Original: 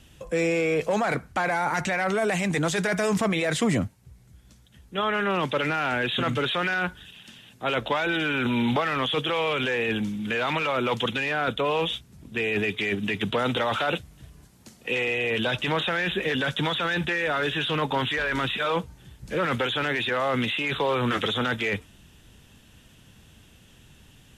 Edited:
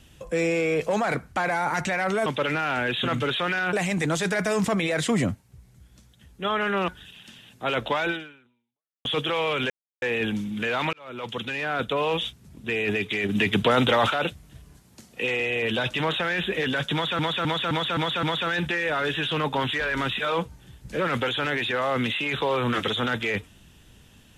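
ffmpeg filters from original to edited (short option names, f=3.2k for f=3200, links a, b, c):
-filter_complex "[0:a]asplit=14[a][b][c][d][e][f][g][h][i][j][k][l][m][n];[a]atrim=end=2.262[o];[b]atrim=start=5.408:end=6.882[p];[c]atrim=start=2.258:end=5.412[q];[d]atrim=start=6.878:end=9.05,asetpts=PTS-STARTPTS,afade=t=out:st=1.222:d=0.95:c=exp[r];[e]atrim=start=9.05:end=9.7,asetpts=PTS-STARTPTS,afade=t=in:d=0.004:c=hsin,afade=t=out:st=0.646:d=0.004:c=hsin,apad=pad_dur=0.32[s];[f]atrim=start=9.7:end=10.61,asetpts=PTS-STARTPTS,afade=t=in:d=0.004:c=hsin,afade=t=out:st=0.906:d=0.004:c=hsin[t];[g]atrim=start=10.61:end=12.972,asetpts=PTS-STARTPTS,afade=t=in:d=1.21:c=qsin[u];[h]atrim=start=12.968:end=13.782,asetpts=PTS-STARTPTS,volume=5dB[v];[i]atrim=start=13.778:end=16.872[w];[j]atrim=start=16.608:end=16.872[x];[k]atrim=start=16.608:end=16.872[y];[l]atrim=start=16.608:end=16.872[z];[m]atrim=start=16.608:end=16.872[aa];[n]atrim=start=16.608[ab];[o][p]acrossfade=d=0.004:c1=hsin:c2=hsin[ac];[ac][q]acrossfade=d=0.004:c1=hsin:c2=hsin[ad];[r][s][t][u]concat=n=4:v=0:a=1[ae];[ad][ae]acrossfade=d=0.004:c1=hsin:c2=hsin[af];[af][v]acrossfade=d=0.004:c1=hsin:c2=hsin[ag];[ag][w]acrossfade=d=0.004:c1=hsin:c2=hsin[ah];[ah][x]acrossfade=d=0.004:c1=hsin:c2=hsin[ai];[ai][y]acrossfade=d=0.004:c1=hsin:c2=hsin[aj];[aj][z]acrossfade=d=0.004:c1=hsin:c2=hsin[ak];[ak][aa]acrossfade=d=0.004:c1=hsin:c2=hsin[al];[al][ab]acrossfade=d=0.004:c1=hsin:c2=hsin"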